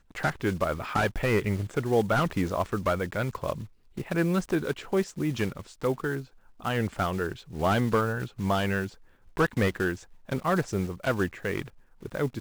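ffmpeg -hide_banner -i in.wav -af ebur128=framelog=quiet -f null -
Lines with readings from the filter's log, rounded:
Integrated loudness:
  I:         -28.8 LUFS
  Threshold: -39.0 LUFS
Loudness range:
  LRA:         2.3 LU
  Threshold: -49.0 LUFS
  LRA low:   -30.0 LUFS
  LRA high:  -27.8 LUFS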